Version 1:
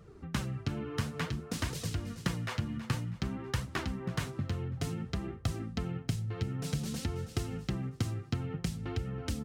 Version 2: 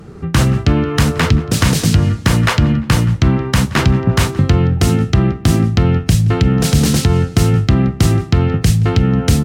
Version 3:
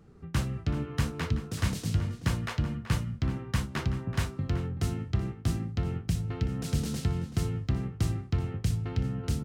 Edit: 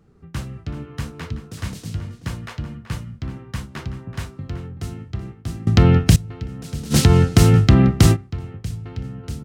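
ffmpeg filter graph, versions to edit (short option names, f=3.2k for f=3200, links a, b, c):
-filter_complex "[1:a]asplit=2[a][b];[2:a]asplit=3[c][d][e];[c]atrim=end=5.672[f];[a]atrim=start=5.668:end=6.162[g];[d]atrim=start=6.158:end=6.96[h];[b]atrim=start=6.9:end=8.17[i];[e]atrim=start=8.11[j];[f][g]acrossfade=d=0.004:c1=hsin:c2=hsin[k];[k][h]acrossfade=d=0.004:c1=hsin:c2=hsin[l];[l][i]acrossfade=d=0.06:c1=tri:c2=tri[m];[m][j]acrossfade=d=0.06:c1=tri:c2=tri"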